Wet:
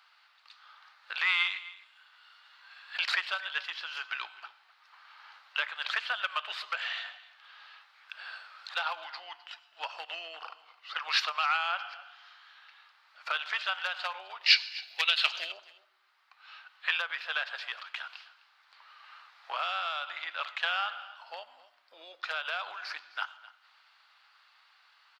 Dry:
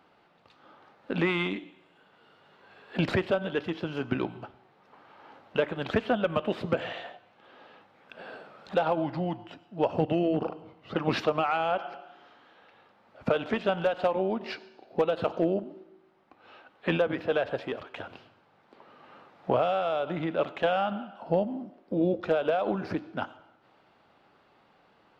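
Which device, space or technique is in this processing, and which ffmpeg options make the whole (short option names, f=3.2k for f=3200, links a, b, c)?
headphones lying on a table: -filter_complex "[0:a]highpass=f=1.2k:w=0.5412,highpass=f=1.2k:w=1.3066,equalizer=f=4.5k:t=o:w=0.56:g=8,asettb=1/sr,asplit=3[a][b][c];[a]atrim=end=14.464[d];[b]atrim=start=14.46:end=15.52,asetpts=PTS-STARTPTS,afade=t=in:d=0.004:c=qsin,afade=t=out:st=1.056:d=0.004:c=qsin,highshelf=f=1.7k:t=q:w=1.5:g=10.5[e];[c]atrim=start=15.516[f];[d][e]acrossfade=d=0.004:c1=hsin:c2=qsin[g];[g][f]acrossfade=d=0.004:c1=qsin:c2=hsin,aecho=1:1:258:0.112,volume=4dB"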